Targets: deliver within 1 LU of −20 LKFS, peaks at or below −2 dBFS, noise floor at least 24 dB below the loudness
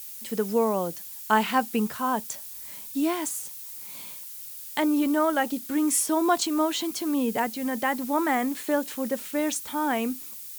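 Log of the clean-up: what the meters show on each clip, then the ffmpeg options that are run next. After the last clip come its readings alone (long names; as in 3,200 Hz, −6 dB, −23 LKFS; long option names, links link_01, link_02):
background noise floor −40 dBFS; target noise floor −51 dBFS; integrated loudness −26.5 LKFS; sample peak −7.0 dBFS; target loudness −20.0 LKFS
→ -af "afftdn=noise_reduction=11:noise_floor=-40"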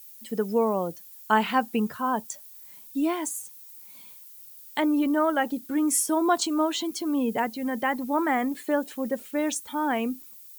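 background noise floor −47 dBFS; target noise floor −51 dBFS
→ -af "afftdn=noise_reduction=6:noise_floor=-47"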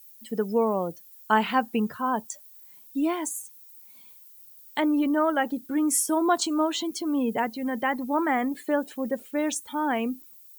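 background noise floor −51 dBFS; integrated loudness −26.5 LKFS; sample peak −7.5 dBFS; target loudness −20.0 LKFS
→ -af "volume=6.5dB,alimiter=limit=-2dB:level=0:latency=1"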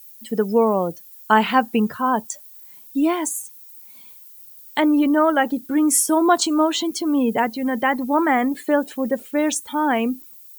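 integrated loudness −20.0 LKFS; sample peak −2.0 dBFS; background noise floor −44 dBFS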